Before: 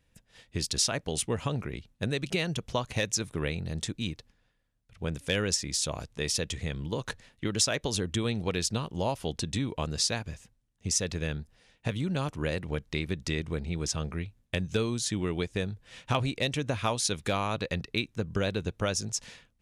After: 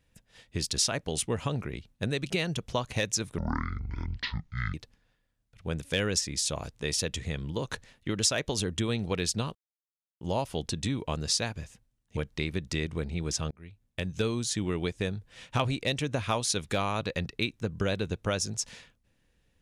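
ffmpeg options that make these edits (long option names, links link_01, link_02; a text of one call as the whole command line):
ffmpeg -i in.wav -filter_complex "[0:a]asplit=6[link_01][link_02][link_03][link_04][link_05][link_06];[link_01]atrim=end=3.384[link_07];[link_02]atrim=start=3.38:end=4.1,asetpts=PTS-STARTPTS,asetrate=23373,aresample=44100,atrim=end_sample=59909,asetpts=PTS-STARTPTS[link_08];[link_03]atrim=start=4.096:end=8.91,asetpts=PTS-STARTPTS,afade=type=out:start_time=4.81:duration=0.004:curve=hsin,apad=pad_dur=0.66[link_09];[link_04]atrim=start=8.91:end=10.872,asetpts=PTS-STARTPTS,afade=type=in:duration=0.004:curve=hsin[link_10];[link_05]atrim=start=12.718:end=14.06,asetpts=PTS-STARTPTS,afade=type=out:start_time=1.338:duration=0.004:curve=hsin[link_11];[link_06]atrim=start=14.06,asetpts=PTS-STARTPTS,afade=type=in:duration=0.97:curve=qsin[link_12];[link_07][link_08]acrossfade=duration=0.004:curve1=hsin:curve2=hsin[link_13];[link_09][link_10]concat=n=2:v=0:a=1[link_14];[link_13][link_14]acrossfade=duration=0.004:curve1=hsin:curve2=hsin[link_15];[link_11][link_12]concat=n=2:v=0:a=1[link_16];[link_15][link_16]acrossfade=duration=0.004:curve1=hsin:curve2=hsin" out.wav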